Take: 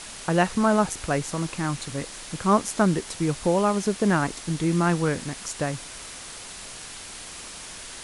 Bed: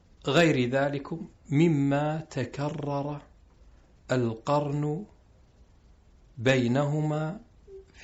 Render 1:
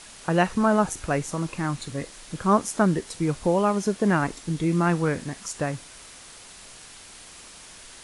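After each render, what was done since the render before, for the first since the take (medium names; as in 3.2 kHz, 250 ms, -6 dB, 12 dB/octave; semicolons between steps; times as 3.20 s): noise print and reduce 6 dB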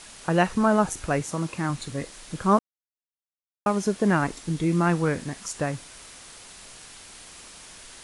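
1.20–1.70 s: high-pass 60 Hz; 2.59–3.66 s: mute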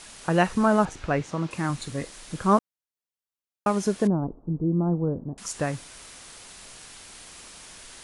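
0.85–1.51 s: low-pass 4.1 kHz; 4.07–5.38 s: Gaussian low-pass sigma 12 samples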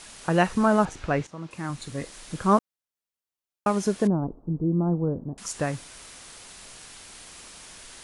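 1.27–2.17 s: fade in, from -12.5 dB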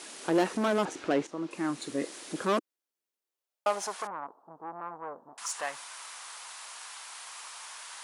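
saturation -24.5 dBFS, distortion -7 dB; high-pass sweep 320 Hz -> 970 Hz, 3.15–4.01 s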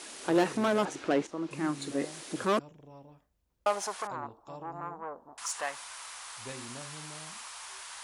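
add bed -21 dB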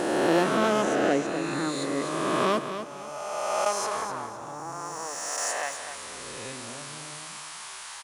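reverse spectral sustain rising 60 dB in 2.36 s; on a send: feedback delay 252 ms, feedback 31%, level -9.5 dB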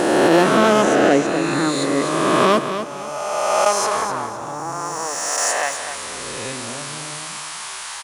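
trim +9.5 dB; peak limiter -3 dBFS, peak gain reduction 3 dB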